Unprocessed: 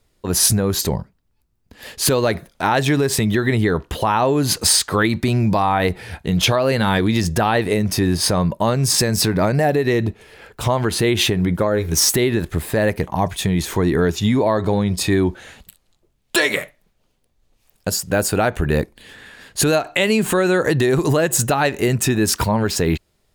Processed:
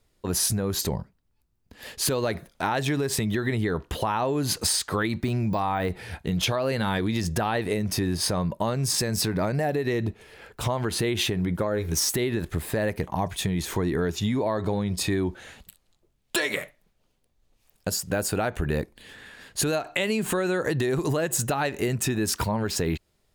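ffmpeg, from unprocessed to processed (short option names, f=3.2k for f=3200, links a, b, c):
-filter_complex "[0:a]asettb=1/sr,asplit=3[a][b][c];[a]atrim=end=5.224[d];[b]atrim=start=5.22:end=6.31,asetpts=PTS-STARTPTS,afade=t=in:d=0.004:c=qsin,afade=t=out:st=1.086:d=0.004:c=qsin,deesser=0.65[e];[c]atrim=start=6.306[f];[d][e]acrossfade=d=0.004:c1=hsin:c2=qsin[g];[g][f]acrossfade=d=0.004:c1=qsin:c2=hsin,acompressor=threshold=-19dB:ratio=2.5,volume=-4.5dB"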